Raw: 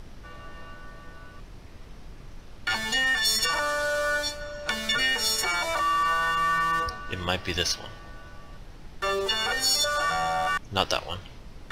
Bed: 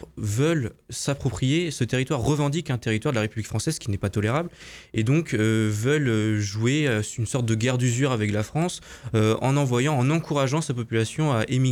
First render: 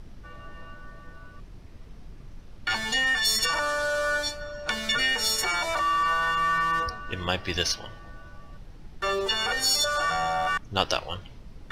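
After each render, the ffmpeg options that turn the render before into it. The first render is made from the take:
ffmpeg -i in.wav -af "afftdn=noise_reduction=6:noise_floor=-45" out.wav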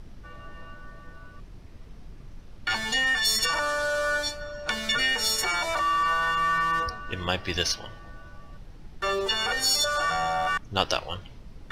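ffmpeg -i in.wav -af anull out.wav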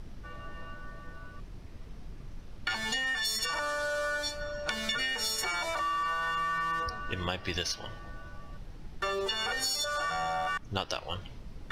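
ffmpeg -i in.wav -af "acompressor=threshold=-29dB:ratio=6" out.wav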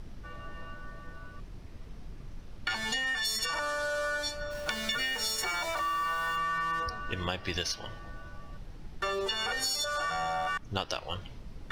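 ffmpeg -i in.wav -filter_complex "[0:a]asplit=3[link_01][link_02][link_03];[link_01]afade=type=out:start_time=4.5:duration=0.02[link_04];[link_02]aeval=exprs='val(0)*gte(abs(val(0)),0.00841)':channel_layout=same,afade=type=in:start_time=4.5:duration=0.02,afade=type=out:start_time=6.36:duration=0.02[link_05];[link_03]afade=type=in:start_time=6.36:duration=0.02[link_06];[link_04][link_05][link_06]amix=inputs=3:normalize=0" out.wav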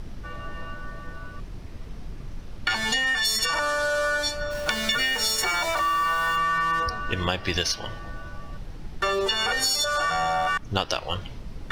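ffmpeg -i in.wav -af "volume=7.5dB" out.wav

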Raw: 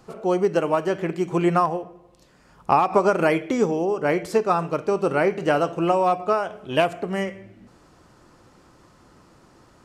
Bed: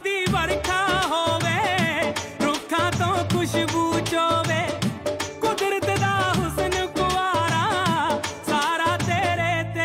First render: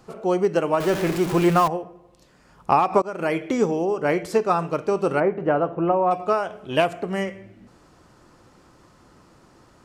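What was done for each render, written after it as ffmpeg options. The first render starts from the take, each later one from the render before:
ffmpeg -i in.wav -filter_complex "[0:a]asettb=1/sr,asplit=3[link_01][link_02][link_03];[link_01]atrim=end=0.804[link_04];[link_02]atrim=start=0.8:end=1.68,asetpts=PTS-STARTPTS,afade=type=in:duration=0.004:curve=qsin,afade=type=out:start_time=0.876:duration=0.004:curve=qsin,aeval=exprs='val(0)+0.5*0.0631*sgn(val(0))':channel_layout=same[link_05];[link_03]atrim=start=1.676[link_06];[link_04][link_05]acrossfade=duration=0.004:curve1=hsin:curve2=qsin[link_07];[link_07][link_06]acrossfade=duration=0.004:curve1=qsin:curve2=hsin,asplit=3[link_08][link_09][link_10];[link_08]afade=type=out:start_time=5.19:duration=0.02[link_11];[link_09]lowpass=1400,afade=type=in:start_time=5.19:duration=0.02,afade=type=out:start_time=6.1:duration=0.02[link_12];[link_10]afade=type=in:start_time=6.1:duration=0.02[link_13];[link_11][link_12][link_13]amix=inputs=3:normalize=0,asplit=2[link_14][link_15];[link_14]atrim=end=3.02,asetpts=PTS-STARTPTS,afade=type=out:start_time=3.016:duration=0.004:curve=hsin:silence=0.0841395[link_16];[link_15]atrim=start=3.02,asetpts=PTS-STARTPTS,afade=type=in:duration=0.45:silence=0.0841395[link_17];[link_16][link_17]concat=n=2:v=0:a=1" out.wav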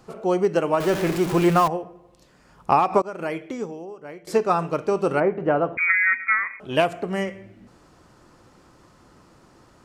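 ffmpeg -i in.wav -filter_complex "[0:a]asettb=1/sr,asplit=3[link_01][link_02][link_03];[link_01]atrim=end=5.774[link_04];[link_02]atrim=start=5.77:end=6.6,asetpts=PTS-STARTPTS,afade=type=in:duration=0.004:curve=qsin,afade=type=out:start_time=0.826:duration=0.004:curve=qsin,lowpass=frequency=2200:width_type=q:width=0.5098,lowpass=frequency=2200:width_type=q:width=0.6013,lowpass=frequency=2200:width_type=q:width=0.9,lowpass=frequency=2200:width_type=q:width=2.563,afreqshift=-2600[link_05];[link_03]atrim=start=6.596[link_06];[link_04][link_05]acrossfade=duration=0.004:curve1=hsin:curve2=qsin[link_07];[link_07][link_06]acrossfade=duration=0.004:curve1=qsin:curve2=hsin,asplit=2[link_08][link_09];[link_08]atrim=end=4.27,asetpts=PTS-STARTPTS,afade=type=out:start_time=2.93:duration=1.34:curve=qua:silence=0.125893[link_10];[link_09]atrim=start=4.27,asetpts=PTS-STARTPTS,afade=type=in:duration=0.004:curve=hsin:silence=0.125893[link_11];[link_10][link_11]concat=n=2:v=0:a=1" out.wav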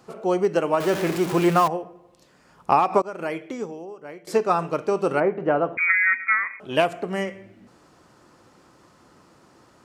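ffmpeg -i in.wav -af "highpass=frequency=150:poles=1" out.wav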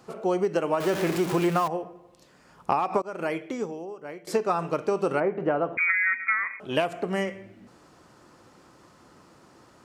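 ffmpeg -i in.wav -af "acompressor=threshold=-21dB:ratio=4" out.wav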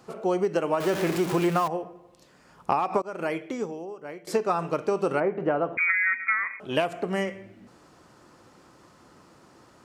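ffmpeg -i in.wav -af anull out.wav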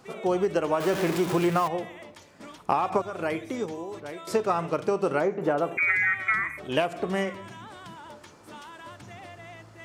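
ffmpeg -i in.wav -i bed.wav -filter_complex "[1:a]volume=-22.5dB[link_01];[0:a][link_01]amix=inputs=2:normalize=0" out.wav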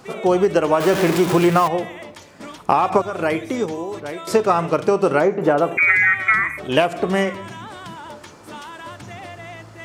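ffmpeg -i in.wav -af "volume=8.5dB,alimiter=limit=-2dB:level=0:latency=1" out.wav

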